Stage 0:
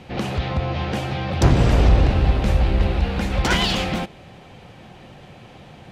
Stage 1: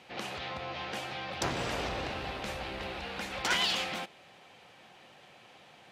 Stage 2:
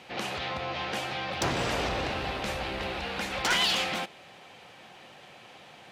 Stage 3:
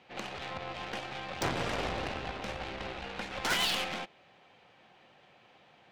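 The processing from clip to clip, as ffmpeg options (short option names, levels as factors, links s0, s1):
-af "highpass=f=1000:p=1,volume=0.501"
-af "asoftclip=type=tanh:threshold=0.0668,volume=1.88"
-af "adynamicsmooth=sensitivity=1.5:basefreq=5200,aeval=exprs='0.126*(cos(1*acos(clip(val(0)/0.126,-1,1)))-cos(1*PI/2))+0.0398*(cos(4*acos(clip(val(0)/0.126,-1,1)))-cos(4*PI/2))+0.0562*(cos(6*acos(clip(val(0)/0.126,-1,1)))-cos(6*PI/2))+0.00891*(cos(7*acos(clip(val(0)/0.126,-1,1)))-cos(7*PI/2))+0.02*(cos(8*acos(clip(val(0)/0.126,-1,1)))-cos(8*PI/2))':c=same,volume=0.668"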